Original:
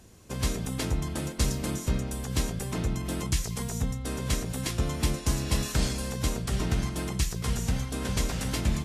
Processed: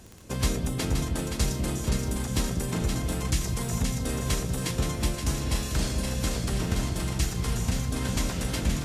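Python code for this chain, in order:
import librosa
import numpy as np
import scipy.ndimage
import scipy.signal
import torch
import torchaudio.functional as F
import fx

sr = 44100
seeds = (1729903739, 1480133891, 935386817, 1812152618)

y = fx.echo_split(x, sr, split_hz=620.0, low_ms=198, high_ms=523, feedback_pct=52, wet_db=-5.0)
y = fx.dmg_crackle(y, sr, seeds[0], per_s=10.0, level_db=-36.0)
y = fx.rider(y, sr, range_db=5, speed_s=0.5)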